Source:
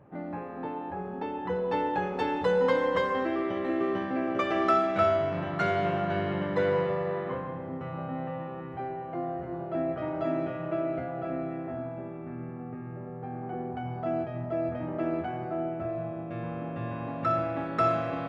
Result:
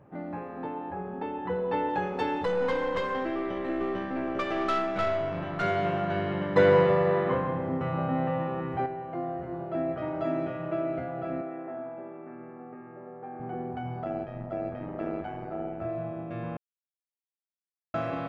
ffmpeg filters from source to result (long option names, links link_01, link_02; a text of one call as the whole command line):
ffmpeg -i in.wav -filter_complex "[0:a]asettb=1/sr,asplit=3[link_01][link_02][link_03];[link_01]atrim=end=0.664[link_04];[link_02]atrim=start=0.66:end=1.89,asetpts=PTS-STARTPTS,afade=type=in:duration=0.004:curve=qsin,afade=type=out:start_time=1.226:duration=0.004:curve=qsin,lowpass=3500[link_05];[link_03]atrim=start=1.886[link_06];[link_04][link_05]acrossfade=duration=0.004:curve1=hsin:curve2=qsin[link_07];[link_07][link_06]acrossfade=duration=0.004:curve1=qsin:curve2=hsin,asettb=1/sr,asplit=3[link_08][link_09][link_10];[link_08]atrim=end=2.454[link_11];[link_09]atrim=start=2.45:end=5.63,asetpts=PTS-STARTPTS,afade=type=in:duration=0.004:curve=qsin,afade=type=out:start_time=3.176:duration=0.004:curve=qsin,aeval=exprs='(tanh(12.6*val(0)+0.35)-tanh(0.35))/12.6':channel_layout=same[link_12];[link_10]atrim=start=5.626[link_13];[link_11][link_12]acrossfade=duration=0.004:curve1=hsin:curve2=qsin[link_14];[link_14][link_13]acrossfade=duration=0.004:curve1=qsin:curve2=hsin,asettb=1/sr,asplit=3[link_15][link_16][link_17];[link_15]atrim=end=11.414[link_18];[link_16]atrim=start=11.41:end=13.4,asetpts=PTS-STARTPTS,afade=type=in:duration=0.004:curve=qsin,afade=type=out:start_time=1.986:duration=0.004:curve=qsin,highpass=320,lowpass=2300[link_19];[link_17]atrim=start=13.396[link_20];[link_18][link_19]acrossfade=duration=0.004:curve1=hsin:curve2=qsin[link_21];[link_21][link_20]acrossfade=duration=0.004:curve1=qsin:curve2=hsin,asettb=1/sr,asplit=3[link_22][link_23][link_24];[link_22]atrim=end=14.044[link_25];[link_23]atrim=start=14.04:end=15.82,asetpts=PTS-STARTPTS,afade=type=in:duration=0.004:curve=qsin,afade=type=out:start_time=1.776:duration=0.004:curve=qsin,tremolo=f=100:d=0.71[link_26];[link_24]atrim=start=15.816[link_27];[link_25][link_26]acrossfade=duration=0.004:curve1=hsin:curve2=qsin[link_28];[link_28][link_27]acrossfade=duration=0.004:curve1=qsin:curve2=hsin,asplit=5[link_29][link_30][link_31][link_32][link_33];[link_29]atrim=end=6.562[link_34];[link_30]atrim=start=6.558:end=8.862,asetpts=PTS-STARTPTS,volume=6.5dB[link_35];[link_31]atrim=start=8.858:end=16.57,asetpts=PTS-STARTPTS,afade=type=out:start_time=7.708:duration=0.004:curve=hsin[link_36];[link_32]atrim=start=16.57:end=17.94,asetpts=PTS-STARTPTS,volume=0[link_37];[link_33]atrim=start=17.94,asetpts=PTS-STARTPTS,afade=type=in:duration=0.004:curve=hsin[link_38];[link_34][link_35]acrossfade=duration=0.004:curve1=hsin:curve2=hsin[link_39];[link_36][link_37][link_38]concat=n=3:v=0:a=1[link_40];[link_39][link_40]acrossfade=duration=0.004:curve1=hsin:curve2=hsin" out.wav